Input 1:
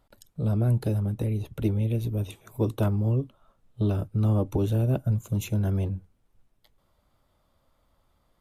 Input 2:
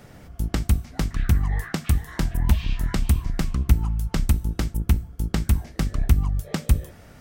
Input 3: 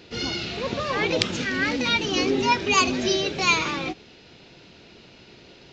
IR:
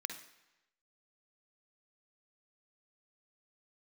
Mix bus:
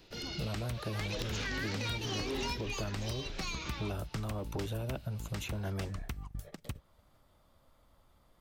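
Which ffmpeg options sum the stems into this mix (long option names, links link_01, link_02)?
-filter_complex "[0:a]volume=2dB,asplit=2[link_01][link_02];[1:a]acompressor=threshold=-17dB:ratio=6,volume=-7.5dB[link_03];[2:a]bass=frequency=250:gain=1,treble=frequency=4000:gain=6,acrossover=split=500|3000[link_04][link_05][link_06];[link_05]acompressor=threshold=-29dB:ratio=6[link_07];[link_04][link_07][link_06]amix=inputs=3:normalize=0,asoftclip=type=tanh:threshold=-15.5dB,volume=-1.5dB,afade=type=in:start_time=0.89:duration=0.54:silence=0.266073,afade=type=out:start_time=2.54:duration=0.24:silence=0.316228[link_08];[link_02]apad=whole_len=322037[link_09];[link_03][link_09]sidechaingate=range=-33dB:threshold=-60dB:ratio=16:detection=peak[link_10];[link_01][link_08]amix=inputs=2:normalize=0,asoftclip=type=tanh:threshold=-12dB,alimiter=limit=-18dB:level=0:latency=1:release=220,volume=0dB[link_11];[link_10][link_11]amix=inputs=2:normalize=0,acrossover=split=570|1700|5400[link_12][link_13][link_14][link_15];[link_12]acompressor=threshold=-38dB:ratio=4[link_16];[link_13]acompressor=threshold=-42dB:ratio=4[link_17];[link_14]acompressor=threshold=-41dB:ratio=4[link_18];[link_15]acompressor=threshold=-54dB:ratio=4[link_19];[link_16][link_17][link_18][link_19]amix=inputs=4:normalize=0,aeval=exprs='clip(val(0),-1,0.0316)':channel_layout=same"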